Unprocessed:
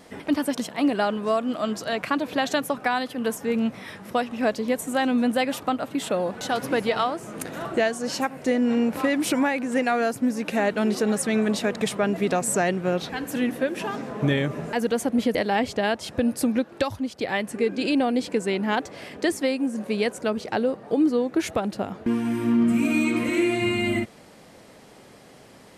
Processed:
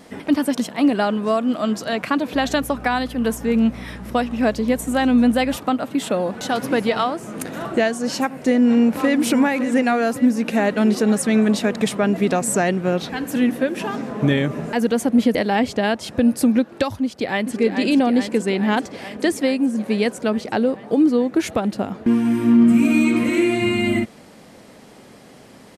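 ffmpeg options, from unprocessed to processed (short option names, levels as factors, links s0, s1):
-filter_complex "[0:a]asettb=1/sr,asplit=3[s0][s1][s2];[s0]atrim=end=2.344[s3];[s1]atrim=start=2.34:end=5.57,asetpts=PTS-STARTPTS,afade=t=in:d=0.004:c=qsin,afade=t=out:st=3.226:d=0.004:c=qsin,aeval=exprs='val(0)+0.0112*(sin(2*PI*60*n/s)+sin(2*PI*2*60*n/s)/2+sin(2*PI*3*60*n/s)/3+sin(2*PI*4*60*n/s)/4+sin(2*PI*5*60*n/s)/5)':c=same[s4];[s2]atrim=start=5.566[s5];[s3][s4]acrossfade=d=0.004:c1=hsin:c2=qsin[s6];[s6][s5]acrossfade=d=0.004:c1=qsin:c2=hsin,asplit=2[s7][s8];[s8]afade=t=in:st=8.42:d=0.01,afade=t=out:st=9.18:d=0.01,aecho=0:1:560|1120|1680|2240|2800|3360|3920:0.266073|0.159644|0.0957861|0.0574717|0.034483|0.0206898|0.0124139[s9];[s7][s9]amix=inputs=2:normalize=0,asplit=2[s10][s11];[s11]afade=t=in:st=17.03:d=0.01,afade=t=out:st=17.57:d=0.01,aecho=0:1:430|860|1290|1720|2150|2580|3010|3440|3870|4300|4730|5160:0.473151|0.354863|0.266148|0.199611|0.149708|0.112281|0.0842108|0.0631581|0.0473686|0.0355264|0.0266448|0.0199836[s12];[s10][s12]amix=inputs=2:normalize=0,equalizer=f=230:w=2:g=4.5,volume=1.41"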